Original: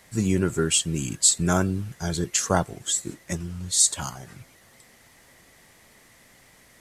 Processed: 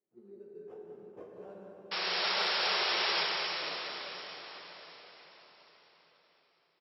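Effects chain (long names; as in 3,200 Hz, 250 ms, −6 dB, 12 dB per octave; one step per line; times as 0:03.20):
source passing by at 0:02.70, 18 m/s, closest 1.1 metres
comb filter 5.2 ms, depth 89%
treble cut that deepens with the level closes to 480 Hz, closed at −24.5 dBFS
sample-rate reduction 4,200 Hz, jitter 0%
envelope filter 360–5,000 Hz, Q 4.4, up, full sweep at −25 dBFS
sound drawn into the spectrogram noise, 0:01.91–0:03.24, 350–5,600 Hz −41 dBFS
single-tap delay 193 ms −9 dB
convolution reverb RT60 5.3 s, pre-delay 13 ms, DRR −2 dB
level +6 dB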